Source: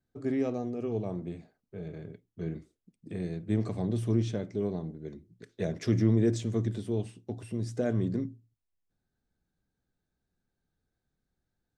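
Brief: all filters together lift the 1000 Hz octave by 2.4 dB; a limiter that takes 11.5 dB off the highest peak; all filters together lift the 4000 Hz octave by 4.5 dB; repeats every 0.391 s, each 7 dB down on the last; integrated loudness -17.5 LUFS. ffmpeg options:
-af "equalizer=f=1k:t=o:g=3.5,equalizer=f=4k:t=o:g=5.5,alimiter=level_in=1.5dB:limit=-24dB:level=0:latency=1,volume=-1.5dB,aecho=1:1:391|782|1173|1564|1955:0.447|0.201|0.0905|0.0407|0.0183,volume=18.5dB"

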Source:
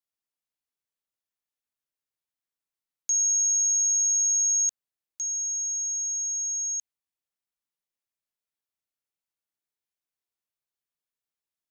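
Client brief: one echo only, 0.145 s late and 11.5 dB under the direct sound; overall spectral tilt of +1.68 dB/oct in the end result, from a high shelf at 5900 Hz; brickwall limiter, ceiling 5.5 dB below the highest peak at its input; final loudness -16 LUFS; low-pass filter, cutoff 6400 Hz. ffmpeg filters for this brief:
-af "lowpass=6.4k,highshelf=f=5.9k:g=8,alimiter=level_in=0.5dB:limit=-24dB:level=0:latency=1,volume=-0.5dB,aecho=1:1:145:0.266,volume=10dB"

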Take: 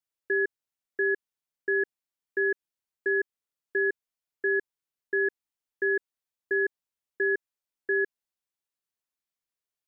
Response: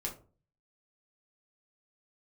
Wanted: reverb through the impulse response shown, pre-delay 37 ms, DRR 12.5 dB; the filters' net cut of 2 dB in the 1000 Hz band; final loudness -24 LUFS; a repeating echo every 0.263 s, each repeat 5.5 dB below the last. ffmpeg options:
-filter_complex "[0:a]equalizer=f=1k:t=o:g=-3.5,aecho=1:1:263|526|789|1052|1315|1578|1841:0.531|0.281|0.149|0.079|0.0419|0.0222|0.0118,asplit=2[a][b];[1:a]atrim=start_sample=2205,adelay=37[c];[b][c]afir=irnorm=-1:irlink=0,volume=-13.5dB[d];[a][d]amix=inputs=2:normalize=0,volume=6.5dB"

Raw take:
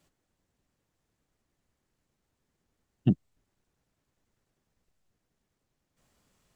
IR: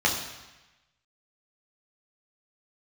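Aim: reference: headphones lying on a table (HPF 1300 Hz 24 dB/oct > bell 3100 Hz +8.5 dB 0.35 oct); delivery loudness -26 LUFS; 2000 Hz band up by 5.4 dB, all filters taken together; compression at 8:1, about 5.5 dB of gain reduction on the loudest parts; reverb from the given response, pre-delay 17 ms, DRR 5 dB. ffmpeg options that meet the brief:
-filter_complex "[0:a]equalizer=f=2k:t=o:g=3.5,acompressor=threshold=-22dB:ratio=8,asplit=2[a][b];[1:a]atrim=start_sample=2205,adelay=17[c];[b][c]afir=irnorm=-1:irlink=0,volume=-19.5dB[d];[a][d]amix=inputs=2:normalize=0,highpass=f=1.3k:w=0.5412,highpass=f=1.3k:w=1.3066,equalizer=f=3.1k:t=o:w=0.35:g=8.5,volume=27.5dB"

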